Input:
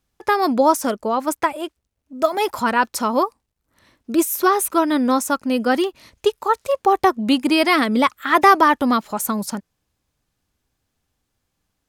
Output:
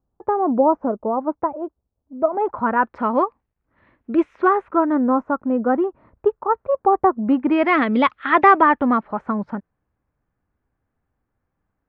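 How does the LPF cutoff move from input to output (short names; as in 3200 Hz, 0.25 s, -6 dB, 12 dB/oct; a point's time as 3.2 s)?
LPF 24 dB/oct
2.18 s 1000 Hz
3.16 s 2200 Hz
4.32 s 2200 Hz
5.05 s 1300 Hz
7.17 s 1300 Hz
8.04 s 3300 Hz
9.07 s 1800 Hz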